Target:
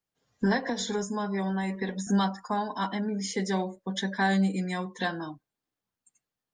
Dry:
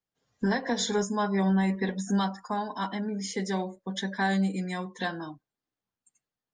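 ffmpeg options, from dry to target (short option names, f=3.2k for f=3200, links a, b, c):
-filter_complex "[0:a]asettb=1/sr,asplit=3[a][b][c];[a]atrim=end=0.684[d];[b]atrim=start=0.68:end=2.07,asetpts=PTS-STARTPTS,afade=t=in:d=0.004:c=qsin,afade=t=out:st=1.386:d=0.004:c=qsin,acrossover=split=370|6800[e][f][g];[e]acompressor=threshold=-33dB:ratio=4[h];[f]acompressor=threshold=-34dB:ratio=4[i];[g]acompressor=threshold=-44dB:ratio=4[j];[h][i][j]amix=inputs=3:normalize=0[k];[c]atrim=start=2.066[l];[d][k]acrossfade=d=0.004:c1=hsin:c2=qsin[m];[m][l]acrossfade=d=0.004:c1=qsin:c2=hsin,volume=1.5dB"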